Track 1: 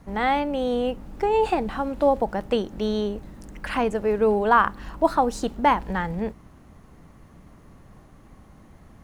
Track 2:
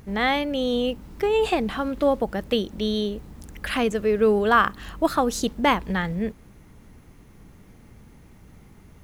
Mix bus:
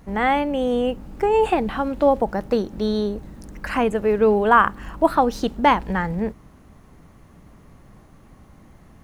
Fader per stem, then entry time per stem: +0.5, -7.5 dB; 0.00, 0.00 s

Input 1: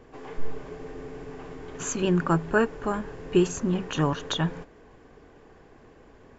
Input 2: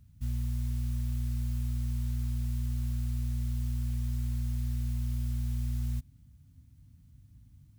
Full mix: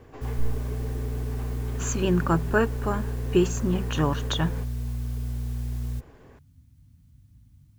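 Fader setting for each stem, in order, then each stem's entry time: 0.0, +1.5 dB; 0.00, 0.00 s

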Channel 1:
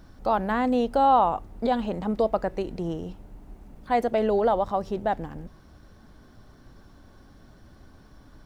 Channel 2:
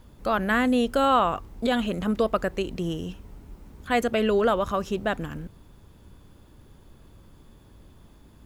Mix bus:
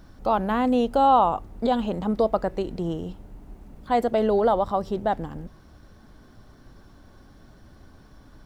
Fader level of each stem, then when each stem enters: +1.0, -15.5 dB; 0.00, 0.00 s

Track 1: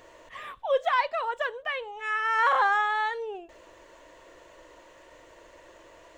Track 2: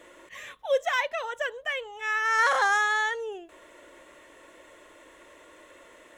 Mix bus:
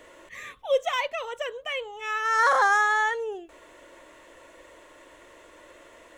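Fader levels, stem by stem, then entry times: -3.5, -0.5 dB; 0.00, 0.00 s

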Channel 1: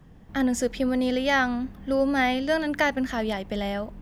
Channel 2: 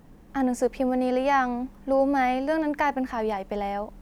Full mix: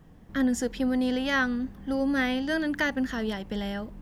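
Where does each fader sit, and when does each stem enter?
-3.5, -7.0 dB; 0.00, 0.00 s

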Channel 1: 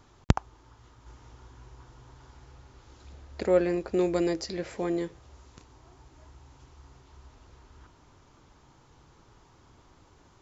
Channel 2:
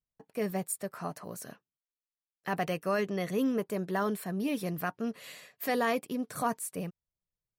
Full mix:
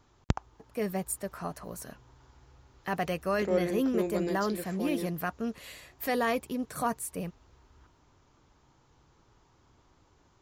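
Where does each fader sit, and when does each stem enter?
-6.0, +0.5 dB; 0.00, 0.40 s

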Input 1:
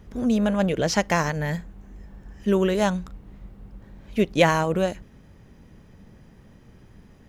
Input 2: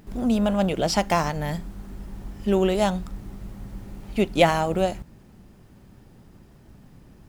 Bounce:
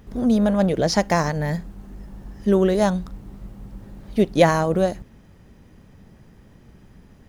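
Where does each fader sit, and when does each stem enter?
0.0, -6.0 dB; 0.00, 0.00 s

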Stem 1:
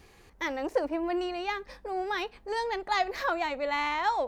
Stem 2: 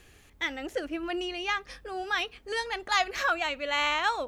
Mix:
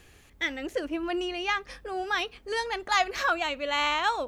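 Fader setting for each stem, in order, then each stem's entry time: -11.5, +0.5 dB; 0.00, 0.00 s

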